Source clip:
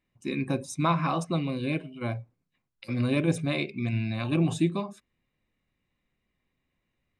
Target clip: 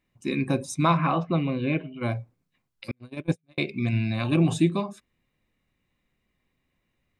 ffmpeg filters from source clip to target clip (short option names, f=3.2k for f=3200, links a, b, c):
-filter_complex "[0:a]asettb=1/sr,asplit=3[a][b][c];[a]atrim=end=0.974[d];[b]atrim=start=0.97:end=2.03,asetpts=PTS-STARTPTS,afade=t=in:d=0.004:c=qsin,afade=t=out:st=1.056:d=0.004:c=qsin,lowpass=f=3.2k:w=0.5412,lowpass=f=3.2k:w=1.3066[e];[c]atrim=start=2.026[f];[d][e]acrossfade=d=0.004:c1=hsin:c2=qsin[g];[g][f]acrossfade=d=0.004:c1=qsin:c2=hsin,asettb=1/sr,asplit=3[h][i][j];[h]atrim=end=2.914[k];[i]atrim=start=2.91:end=3.58,asetpts=PTS-STARTPTS,afade=t=in:d=0.004:c=qsin,afade=t=out:st=0.666:d=0.004:c=qsin,agate=range=-48dB:threshold=-21dB:ratio=16:detection=peak[l];[j]atrim=start=3.576[m];[k][l]acrossfade=d=0.004:c1=hsin:c2=qsin[n];[n][m]acrossfade=d=0.004:c1=qsin:c2=hsin,volume=3.5dB"